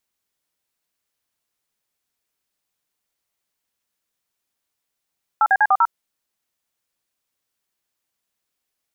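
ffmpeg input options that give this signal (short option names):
-f lavfi -i "aevalsrc='0.188*clip(min(mod(t,0.098),0.051-mod(t,0.098))/0.002,0,1)*(eq(floor(t/0.098),0)*(sin(2*PI*852*mod(t,0.098))+sin(2*PI*1336*mod(t,0.098)))+eq(floor(t/0.098),1)*(sin(2*PI*770*mod(t,0.098))+sin(2*PI*1633*mod(t,0.098)))+eq(floor(t/0.098),2)*(sin(2*PI*852*mod(t,0.098))+sin(2*PI*1633*mod(t,0.098)))+eq(floor(t/0.098),3)*(sin(2*PI*770*mod(t,0.098))+sin(2*PI*1209*mod(t,0.098)))+eq(floor(t/0.098),4)*(sin(2*PI*941*mod(t,0.098))+sin(2*PI*1336*mod(t,0.098))))':d=0.49:s=44100"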